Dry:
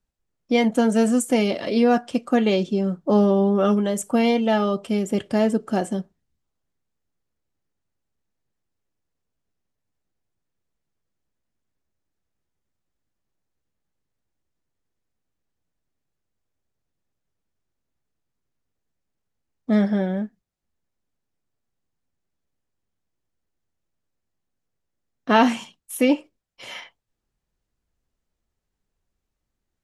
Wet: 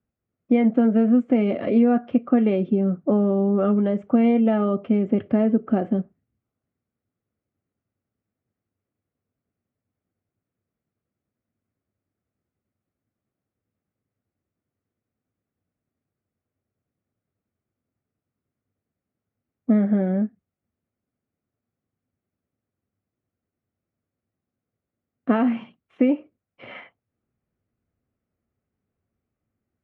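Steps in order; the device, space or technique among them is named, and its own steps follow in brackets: bass amplifier (compressor, threshold -20 dBFS, peak gain reduction 9 dB; speaker cabinet 88–2100 Hz, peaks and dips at 99 Hz +8 dB, 240 Hz +5 dB, 930 Hz -9 dB, 1700 Hz -6 dB); gain +3 dB

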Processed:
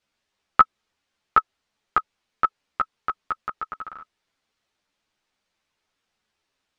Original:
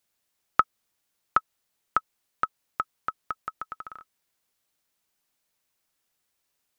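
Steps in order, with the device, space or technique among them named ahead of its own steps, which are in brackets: string-machine ensemble chorus (ensemble effect; LPF 4500 Hz 12 dB/oct); gain +8 dB

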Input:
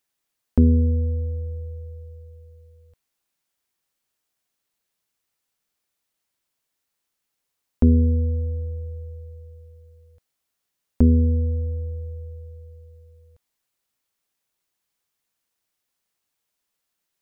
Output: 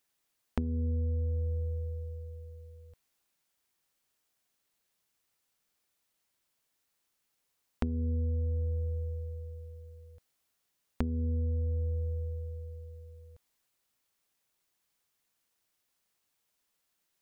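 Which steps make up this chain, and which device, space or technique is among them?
drum-bus smash (transient shaper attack +5 dB, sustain +1 dB; compressor 16:1, threshold -28 dBFS, peak gain reduction 21.5 dB; soft clip -14 dBFS, distortion -25 dB)

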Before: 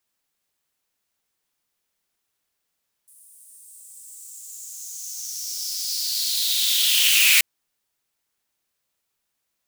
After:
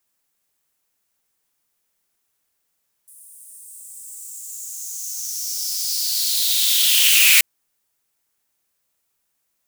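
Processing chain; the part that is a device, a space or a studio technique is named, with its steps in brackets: exciter from parts (in parallel at -4.5 dB: HPF 4100 Hz 12 dB/oct + soft clip -21.5 dBFS, distortion -9 dB + HPF 3900 Hz 6 dB/oct); on the sum: gain +2.5 dB

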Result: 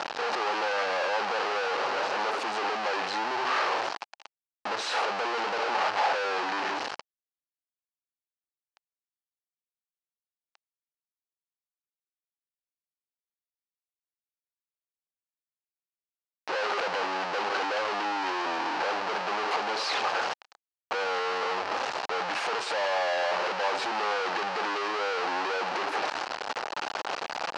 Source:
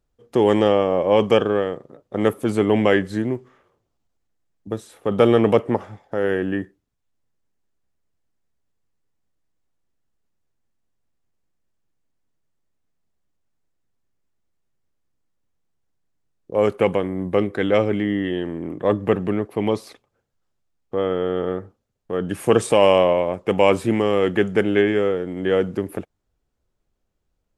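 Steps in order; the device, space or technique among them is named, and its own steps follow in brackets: home computer beeper (infinite clipping; speaker cabinet 780–4500 Hz, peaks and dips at 820 Hz +6 dB, 2100 Hz -4 dB, 3500 Hz -7 dB)

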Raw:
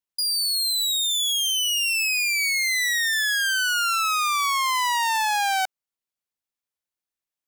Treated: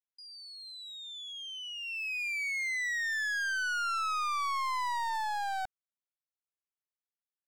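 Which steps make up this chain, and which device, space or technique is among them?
walkie-talkie (BPF 580–2400 Hz; hard clip -26 dBFS, distortion -10 dB; gate -28 dBFS, range -13 dB); gain +1.5 dB

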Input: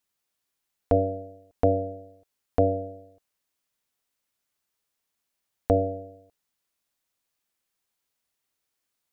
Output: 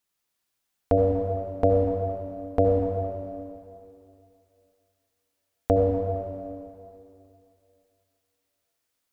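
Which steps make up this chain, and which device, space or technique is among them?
stairwell (reverb RT60 2.7 s, pre-delay 63 ms, DRR 1 dB)

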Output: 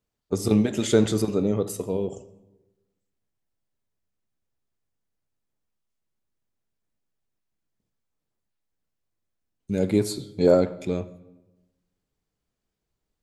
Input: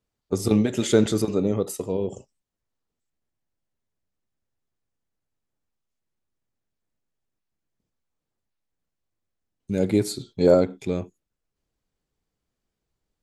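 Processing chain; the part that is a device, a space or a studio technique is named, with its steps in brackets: saturated reverb return (on a send at -13 dB: reverb RT60 1.0 s, pre-delay 3 ms + soft clip -15 dBFS, distortion -13 dB); on the sum: gain -1 dB

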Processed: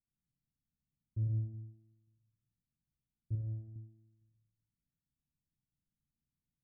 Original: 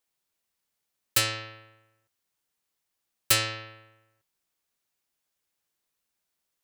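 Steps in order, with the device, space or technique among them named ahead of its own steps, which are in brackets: club heard from the street (limiter -17 dBFS, peak gain reduction 8.5 dB; LPF 200 Hz 24 dB/oct; reverb RT60 0.60 s, pre-delay 65 ms, DRR 0 dB); 3.35–3.76 graphic EQ 125/250/2000 Hz -6/-7/+7 dB; gain +6.5 dB

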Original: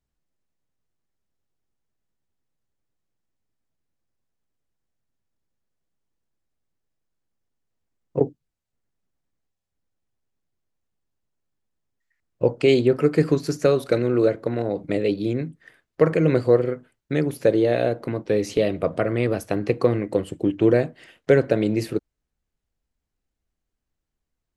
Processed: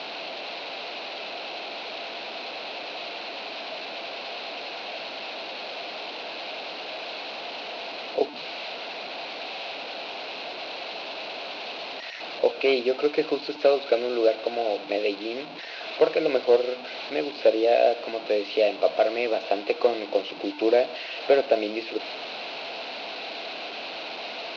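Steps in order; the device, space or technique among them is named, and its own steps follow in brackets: digital answering machine (BPF 320–3200 Hz; delta modulation 32 kbps, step -30.5 dBFS; speaker cabinet 360–4400 Hz, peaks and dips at 370 Hz -3 dB, 680 Hz +8 dB, 1200 Hz -5 dB, 1800 Hz -8 dB, 2600 Hz +8 dB, 4100 Hz +9 dB)

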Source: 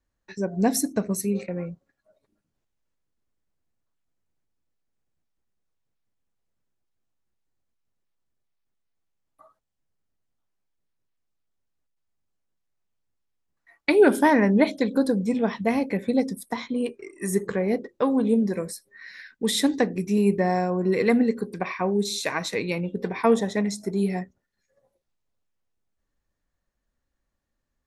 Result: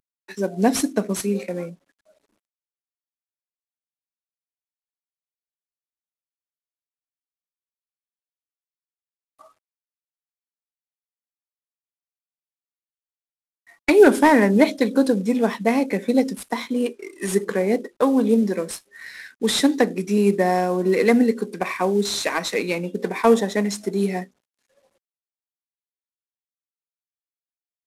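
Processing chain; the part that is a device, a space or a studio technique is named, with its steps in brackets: early wireless headset (HPF 200 Hz 24 dB/oct; CVSD 64 kbps); gain +4.5 dB

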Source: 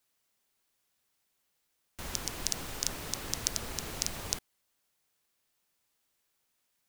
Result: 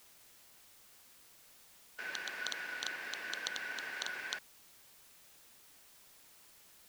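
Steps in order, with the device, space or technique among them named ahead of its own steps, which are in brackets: split-band scrambled radio (four-band scrambler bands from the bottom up 2143; BPF 310–3300 Hz; white noise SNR 15 dB); gain -1 dB

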